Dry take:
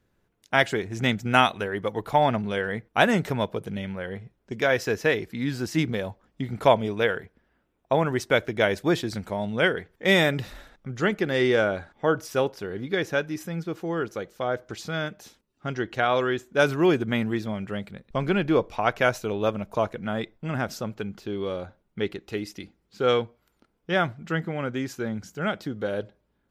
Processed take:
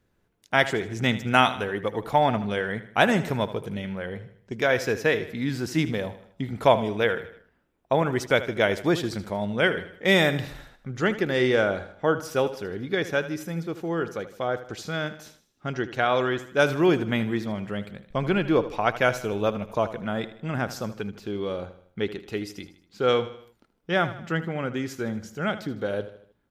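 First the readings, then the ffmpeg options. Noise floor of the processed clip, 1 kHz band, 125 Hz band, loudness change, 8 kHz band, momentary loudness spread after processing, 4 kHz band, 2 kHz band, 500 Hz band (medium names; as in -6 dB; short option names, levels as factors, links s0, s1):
-68 dBFS, 0.0 dB, 0.0 dB, 0.0 dB, 0.0 dB, 12 LU, 0.0 dB, 0.0 dB, 0.0 dB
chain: -af "aecho=1:1:78|156|234|312:0.2|0.0938|0.0441|0.0207"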